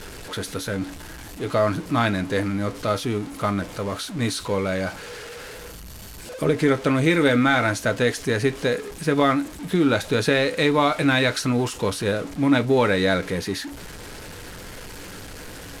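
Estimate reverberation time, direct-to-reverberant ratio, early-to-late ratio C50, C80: not exponential, 10.0 dB, 29.5 dB, 39.5 dB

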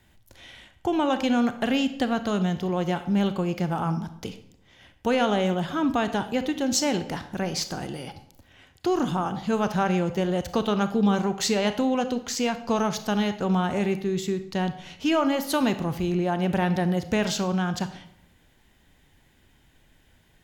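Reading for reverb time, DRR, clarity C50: 0.70 s, 10.0 dB, 12.0 dB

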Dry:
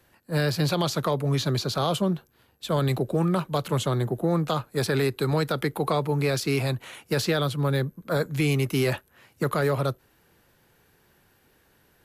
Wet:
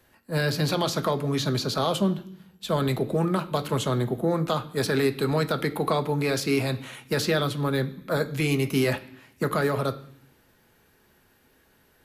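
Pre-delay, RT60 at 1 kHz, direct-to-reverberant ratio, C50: 3 ms, 0.65 s, 7.5 dB, 16.0 dB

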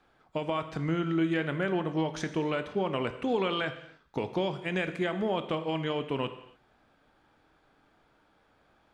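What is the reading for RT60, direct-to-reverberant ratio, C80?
not exponential, 9.0 dB, 13.5 dB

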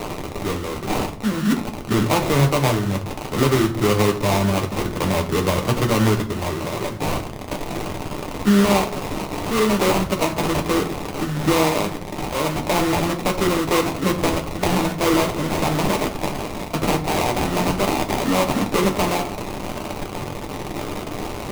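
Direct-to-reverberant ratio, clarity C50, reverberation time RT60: 2.0 dB, 12.0 dB, 0.50 s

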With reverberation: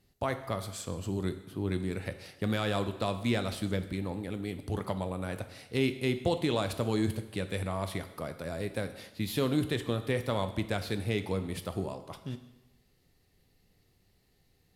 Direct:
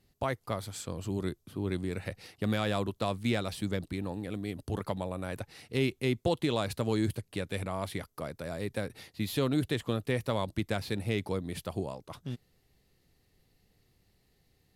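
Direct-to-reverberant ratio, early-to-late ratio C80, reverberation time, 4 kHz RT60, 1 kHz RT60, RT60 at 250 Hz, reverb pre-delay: 8.5 dB, 13.5 dB, 1.0 s, 0.90 s, 0.95 s, 1.0 s, 5 ms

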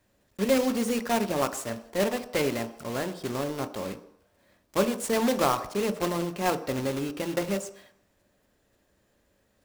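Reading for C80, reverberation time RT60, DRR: 16.5 dB, 0.70 s, 9.0 dB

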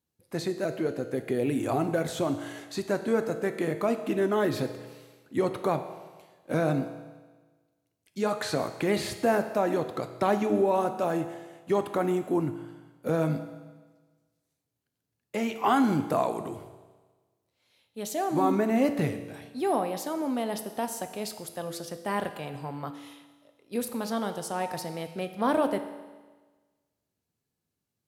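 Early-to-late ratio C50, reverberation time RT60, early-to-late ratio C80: 10.0 dB, 1.3 s, 11.5 dB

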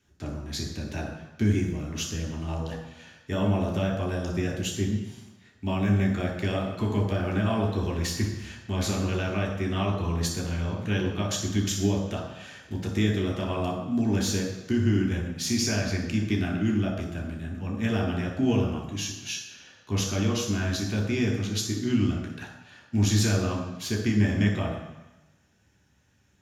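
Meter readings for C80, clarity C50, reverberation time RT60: 7.0 dB, 4.5 dB, 1.0 s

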